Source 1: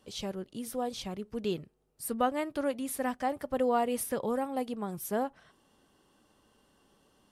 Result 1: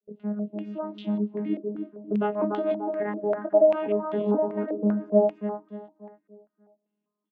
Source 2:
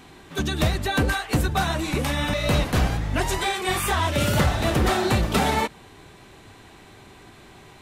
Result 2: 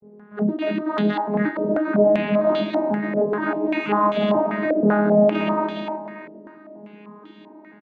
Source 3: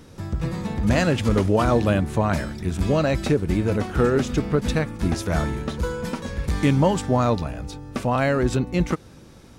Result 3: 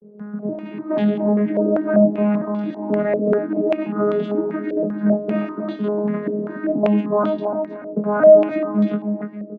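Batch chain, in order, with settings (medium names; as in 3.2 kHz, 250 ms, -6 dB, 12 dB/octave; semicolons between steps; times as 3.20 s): vocoder on a broken chord bare fifth, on G#3, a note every 482 ms; peak limiter -16.5 dBFS; bass shelf 400 Hz +8.5 dB; gate with hold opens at -44 dBFS; dynamic bell 660 Hz, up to +5 dB, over -40 dBFS, Q 4.2; doubling 24 ms -6 dB; level rider gain up to 5 dB; feedback delay 292 ms, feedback 39%, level -6 dB; step-sequenced low-pass 5.1 Hz 500–3400 Hz; trim -7.5 dB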